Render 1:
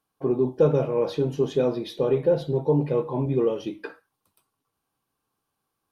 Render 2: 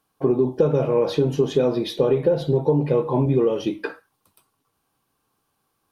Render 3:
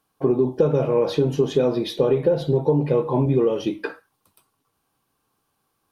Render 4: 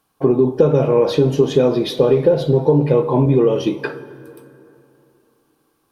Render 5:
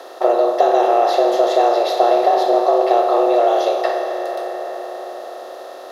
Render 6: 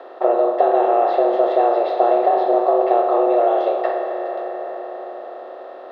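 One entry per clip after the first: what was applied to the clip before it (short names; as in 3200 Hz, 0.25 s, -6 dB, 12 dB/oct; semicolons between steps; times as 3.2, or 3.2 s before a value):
compressor 10:1, threshold -22 dBFS, peak gain reduction 8.5 dB; gain +7.5 dB
nothing audible
plate-style reverb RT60 3.1 s, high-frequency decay 0.55×, DRR 14.5 dB; gain +5 dB
per-bin compression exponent 0.4; frequency shift +230 Hz; gain -5 dB
air absorption 490 m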